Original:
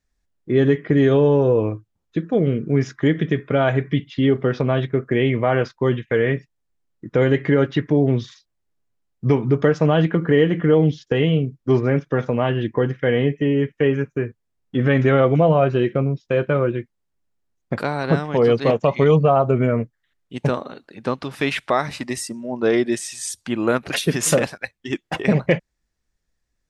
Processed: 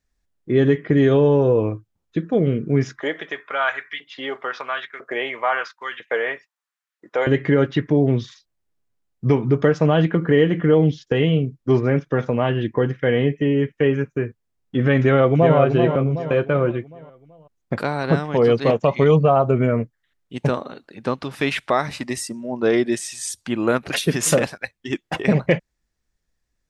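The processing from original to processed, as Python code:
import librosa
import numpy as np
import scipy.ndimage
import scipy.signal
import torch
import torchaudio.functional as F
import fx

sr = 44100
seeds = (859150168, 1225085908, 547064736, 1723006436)

y = fx.filter_lfo_highpass(x, sr, shape='saw_up', hz=1.0, low_hz=600.0, high_hz=1700.0, q=1.9, at=(3.0, 7.27))
y = fx.echo_throw(y, sr, start_s=15.03, length_s=0.54, ms=380, feedback_pct=45, wet_db=-6.0)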